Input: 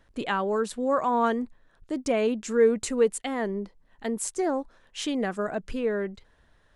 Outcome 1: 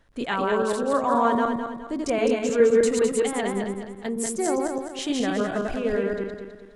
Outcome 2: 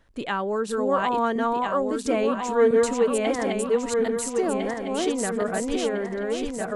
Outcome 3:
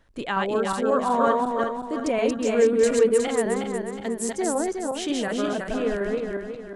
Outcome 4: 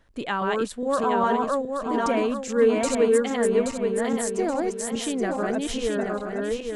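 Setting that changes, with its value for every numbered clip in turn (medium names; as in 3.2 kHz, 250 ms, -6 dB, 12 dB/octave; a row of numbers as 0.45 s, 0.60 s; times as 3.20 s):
backward echo that repeats, time: 104 ms, 677 ms, 182 ms, 413 ms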